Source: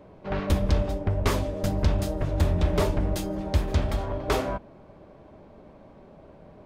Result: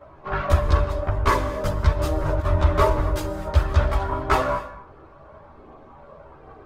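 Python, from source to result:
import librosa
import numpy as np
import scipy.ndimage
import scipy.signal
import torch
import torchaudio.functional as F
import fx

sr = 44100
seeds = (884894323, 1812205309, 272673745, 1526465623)

y = fx.peak_eq(x, sr, hz=1200.0, db=14.0, octaves=1.2)
y = fx.over_compress(y, sr, threshold_db=-25.0, ratio=-0.5, at=(1.9, 2.43), fade=0.02)
y = fx.chorus_voices(y, sr, voices=6, hz=0.32, base_ms=14, depth_ms=1.8, mix_pct=65)
y = fx.rev_gated(y, sr, seeds[0], gate_ms=290, shape='flat', drr_db=11.5)
y = y * 10.0 ** (1.5 / 20.0)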